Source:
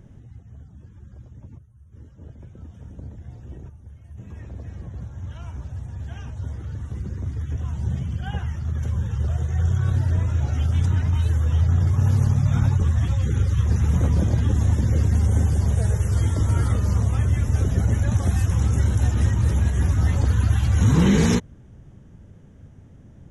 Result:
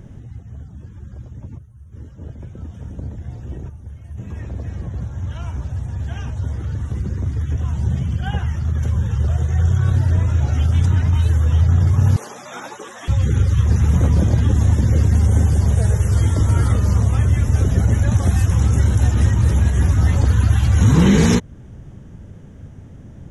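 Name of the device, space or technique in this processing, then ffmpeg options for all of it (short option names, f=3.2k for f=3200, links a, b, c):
parallel compression: -filter_complex "[0:a]asplit=2[a][b];[b]acompressor=threshold=-29dB:ratio=6,volume=-2dB[c];[a][c]amix=inputs=2:normalize=0,asettb=1/sr,asplit=3[d][e][f];[d]atrim=end=12.164[g];[e]atrim=start=12.16:end=13.08,asetpts=PTS-STARTPTS,afade=t=in:d=0.004:c=qsin,afade=t=out:st=0.916:d=0.004:c=qsin,highpass=f=370:w=0.5412,highpass=f=370:w=1.3066[h];[f]atrim=start=13.076[i];[g][h]acrossfade=d=0.004:c1=hsin:c2=qsin[j];[j][i]acrossfade=d=0.004:c1=qsin:c2=hsin,volume=3dB"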